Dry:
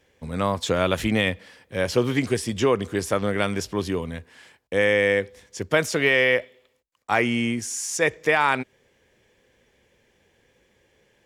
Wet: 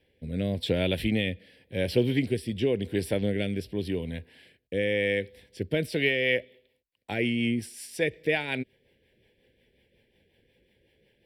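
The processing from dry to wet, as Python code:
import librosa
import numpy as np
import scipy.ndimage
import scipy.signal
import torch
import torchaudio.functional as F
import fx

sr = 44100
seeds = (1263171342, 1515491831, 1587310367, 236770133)

y = fx.dynamic_eq(x, sr, hz=1000.0, q=1.2, threshold_db=-35.0, ratio=4.0, max_db=-6)
y = fx.fixed_phaser(y, sr, hz=2900.0, stages=4)
y = fx.rotary_switch(y, sr, hz=0.9, then_hz=5.5, switch_at_s=5.64)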